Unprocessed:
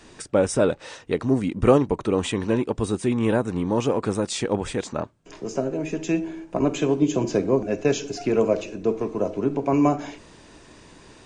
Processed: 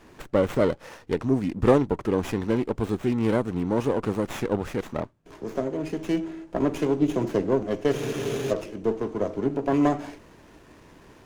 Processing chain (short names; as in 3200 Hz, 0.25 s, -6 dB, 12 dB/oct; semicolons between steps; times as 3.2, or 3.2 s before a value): spectral freeze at 7.95, 0.57 s; running maximum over 9 samples; gain -2 dB